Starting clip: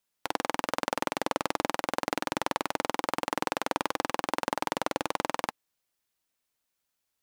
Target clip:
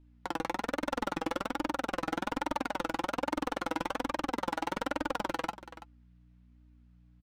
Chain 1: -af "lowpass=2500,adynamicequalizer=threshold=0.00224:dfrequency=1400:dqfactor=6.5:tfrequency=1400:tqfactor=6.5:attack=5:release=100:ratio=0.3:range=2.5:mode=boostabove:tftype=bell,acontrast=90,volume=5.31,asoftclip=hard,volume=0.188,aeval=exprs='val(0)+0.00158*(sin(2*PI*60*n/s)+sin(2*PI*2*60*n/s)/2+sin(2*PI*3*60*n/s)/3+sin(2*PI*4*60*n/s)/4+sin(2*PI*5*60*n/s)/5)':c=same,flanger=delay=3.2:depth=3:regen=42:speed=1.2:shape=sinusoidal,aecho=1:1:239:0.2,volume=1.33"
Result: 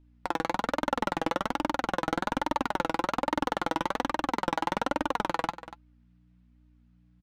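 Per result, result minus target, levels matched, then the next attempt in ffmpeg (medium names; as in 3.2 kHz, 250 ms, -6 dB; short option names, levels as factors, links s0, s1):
echo 93 ms early; overload inside the chain: distortion -6 dB
-af "lowpass=2500,adynamicequalizer=threshold=0.00224:dfrequency=1400:dqfactor=6.5:tfrequency=1400:tqfactor=6.5:attack=5:release=100:ratio=0.3:range=2.5:mode=boostabove:tftype=bell,acontrast=90,volume=5.31,asoftclip=hard,volume=0.188,aeval=exprs='val(0)+0.00158*(sin(2*PI*60*n/s)+sin(2*PI*2*60*n/s)/2+sin(2*PI*3*60*n/s)/3+sin(2*PI*4*60*n/s)/4+sin(2*PI*5*60*n/s)/5)':c=same,flanger=delay=3.2:depth=3:regen=42:speed=1.2:shape=sinusoidal,aecho=1:1:332:0.2,volume=1.33"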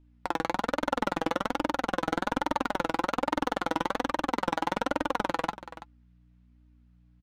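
overload inside the chain: distortion -6 dB
-af "lowpass=2500,adynamicequalizer=threshold=0.00224:dfrequency=1400:dqfactor=6.5:tfrequency=1400:tqfactor=6.5:attack=5:release=100:ratio=0.3:range=2.5:mode=boostabove:tftype=bell,acontrast=90,volume=14.1,asoftclip=hard,volume=0.0708,aeval=exprs='val(0)+0.00158*(sin(2*PI*60*n/s)+sin(2*PI*2*60*n/s)/2+sin(2*PI*3*60*n/s)/3+sin(2*PI*4*60*n/s)/4+sin(2*PI*5*60*n/s)/5)':c=same,flanger=delay=3.2:depth=3:regen=42:speed=1.2:shape=sinusoidal,aecho=1:1:332:0.2,volume=1.33"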